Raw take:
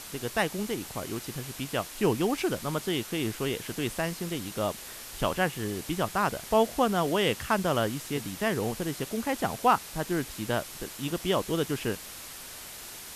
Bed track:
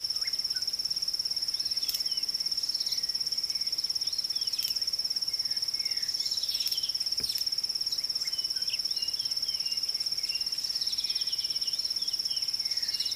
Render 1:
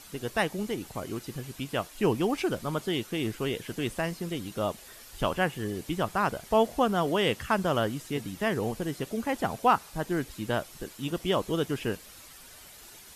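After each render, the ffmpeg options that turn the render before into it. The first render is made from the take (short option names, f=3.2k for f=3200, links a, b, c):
-af "afftdn=nr=9:nf=-43"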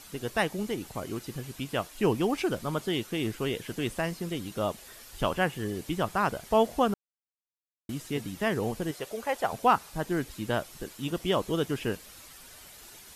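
-filter_complex "[0:a]asettb=1/sr,asplit=3[a][b][c];[a]atrim=end=8.914[d];[b]atrim=start=8.91:end=9.53,asetpts=PTS-STARTPTS,afade=t=in:d=0.004:c=qsin,afade=t=out:st=0.616:d=0.004:c=qsin,lowshelf=f=370:t=q:w=1.5:g=-9.5[e];[c]atrim=start=9.526[f];[d][e]acrossfade=d=0.004:c1=hsin:c2=qsin[g];[g][f]acrossfade=d=0.004:c1=qsin:c2=hsin,asplit=3[h][i][j];[h]atrim=end=6.94,asetpts=PTS-STARTPTS,afade=t=out:st=6.936:d=0.004:c=hsin[k];[i]atrim=start=6.94:end=7.89,asetpts=PTS-STARTPTS,volume=0[l];[j]atrim=start=7.89,asetpts=PTS-STARTPTS,afade=t=in:d=0.004:c=hsin[m];[k][l][m]concat=n=3:v=0:a=1"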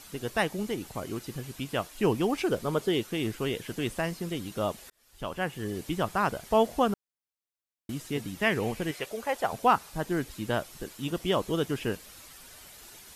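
-filter_complex "[0:a]asettb=1/sr,asplit=3[a][b][c];[a]atrim=end=2.484[d];[b]atrim=start=2.48:end=3.01,asetpts=PTS-STARTPTS,afade=t=in:d=0.004:c=qsin,afade=t=out:st=0.526:d=0.004:c=qsin,equalizer=f=440:t=o:w=0.55:g=7.5[e];[c]atrim=start=3.006[f];[d][e]acrossfade=d=0.004:c1=hsin:c2=qsin[g];[g][f]acrossfade=d=0.004:c1=qsin:c2=hsin,asettb=1/sr,asplit=3[h][i][j];[h]atrim=end=8.424[k];[i]atrim=start=8.42:end=9.06,asetpts=PTS-STARTPTS,afade=t=in:d=0.004:c=qsin,afade=t=out:st=0.636:d=0.004:c=qsin,equalizer=f=2.3k:t=o:w=0.74:g=10[l];[j]atrim=start=9.056[m];[k][l]acrossfade=d=0.004:c1=hsin:c2=qsin[n];[n][m]acrossfade=d=0.004:c1=qsin:c2=hsin,asplit=2[o][p];[o]atrim=end=4.9,asetpts=PTS-STARTPTS,afade=t=out:st=4.896:d=0.004:c=hsin[q];[p]atrim=start=4.9,asetpts=PTS-STARTPTS,afade=t=in:d=0.87[r];[q][r]concat=n=2:v=0:a=1"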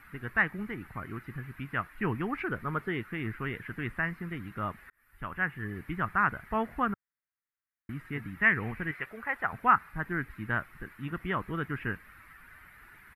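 -filter_complex "[0:a]acrossover=split=5000[a][b];[b]acompressor=threshold=-58dB:ratio=4:attack=1:release=60[c];[a][c]amix=inputs=2:normalize=0,firequalizer=gain_entry='entry(100,0);entry(540,-14);entry(1300,5);entry(1900,7);entry(3200,-17);entry(6400,-26);entry(11000,-6)':delay=0.05:min_phase=1"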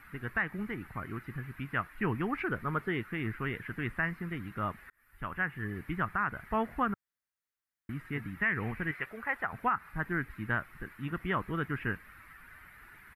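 -af "alimiter=limit=-19.5dB:level=0:latency=1:release=133"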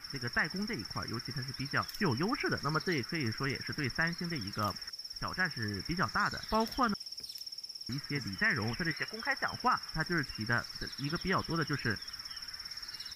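-filter_complex "[1:a]volume=-13.5dB[a];[0:a][a]amix=inputs=2:normalize=0"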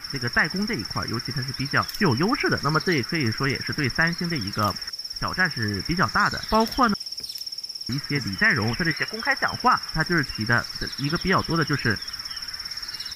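-af "volume=10.5dB"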